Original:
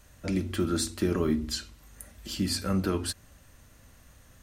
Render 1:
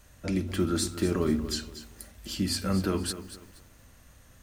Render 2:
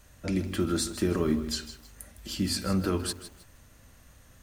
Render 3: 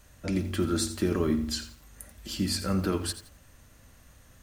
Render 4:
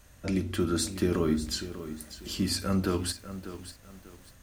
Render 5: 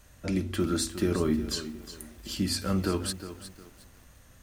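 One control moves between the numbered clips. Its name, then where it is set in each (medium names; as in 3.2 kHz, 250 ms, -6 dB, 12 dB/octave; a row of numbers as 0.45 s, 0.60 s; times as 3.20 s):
bit-crushed delay, time: 238 ms, 158 ms, 86 ms, 594 ms, 360 ms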